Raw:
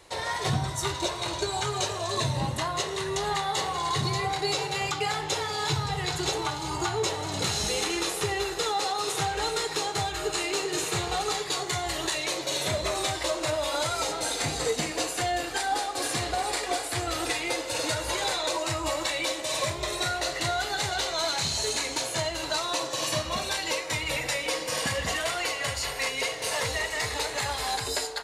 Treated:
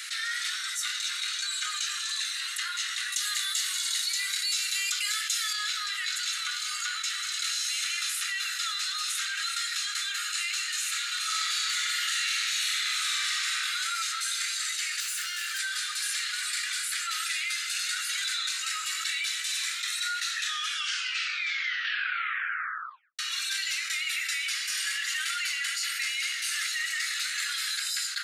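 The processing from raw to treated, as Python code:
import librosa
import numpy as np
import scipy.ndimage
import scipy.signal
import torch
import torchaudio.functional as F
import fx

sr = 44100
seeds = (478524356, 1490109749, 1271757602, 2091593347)

y = fx.riaa(x, sr, side='recording', at=(3.12, 5.53))
y = fx.reverb_throw(y, sr, start_s=11.18, length_s=2.32, rt60_s=2.6, drr_db=-8.0)
y = fx.clip_hard(y, sr, threshold_db=-33.0, at=(15.0, 15.59))
y = fx.edit(y, sr, fx.tape_stop(start_s=20.17, length_s=3.02), tone=tone)
y = scipy.signal.sosfilt(scipy.signal.butter(16, 1300.0, 'highpass', fs=sr, output='sos'), y)
y = fx.env_flatten(y, sr, amount_pct=70)
y = F.gain(torch.from_numpy(y), -8.0).numpy()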